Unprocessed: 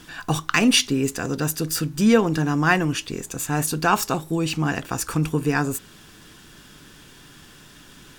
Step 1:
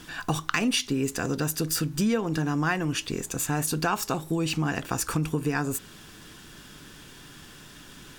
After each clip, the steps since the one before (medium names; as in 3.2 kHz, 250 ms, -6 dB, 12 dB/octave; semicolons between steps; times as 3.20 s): compression 4:1, threshold -23 dBFS, peak gain reduction 10.5 dB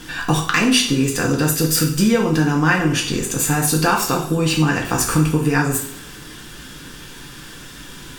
band-stop 650 Hz, Q 17; reverberation, pre-delay 3 ms, DRR -1 dB; trim +6.5 dB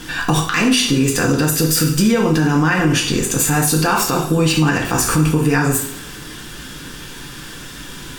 peak limiter -10 dBFS, peak gain reduction 7.5 dB; trim +4 dB